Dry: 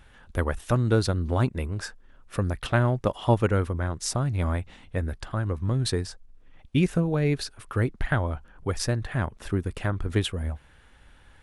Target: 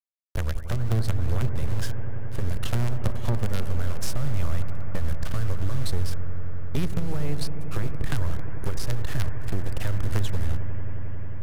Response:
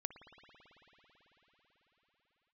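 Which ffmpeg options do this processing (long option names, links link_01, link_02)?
-filter_complex "[0:a]asplit=2[link_01][link_02];[link_02]alimiter=limit=-19.5dB:level=0:latency=1:release=31,volume=-2dB[link_03];[link_01][link_03]amix=inputs=2:normalize=0,adynamicequalizer=threshold=0.00794:dfrequency=4100:dqfactor=1.7:tfrequency=4100:tqfactor=1.7:attack=5:release=100:ratio=0.375:range=2:mode=boostabove:tftype=bell,acrusher=bits=3:dc=4:mix=0:aa=0.000001,acrossover=split=160[link_04][link_05];[link_05]acompressor=threshold=-48dB:ratio=2[link_06];[link_04][link_06]amix=inputs=2:normalize=0,asoftclip=type=hard:threshold=-23dB,acompressor=threshold=-29dB:ratio=6,agate=range=-15dB:threshold=-40dB:ratio=16:detection=peak[link_07];[1:a]atrim=start_sample=2205,asetrate=27342,aresample=44100[link_08];[link_07][link_08]afir=irnorm=-1:irlink=0,volume=8.5dB"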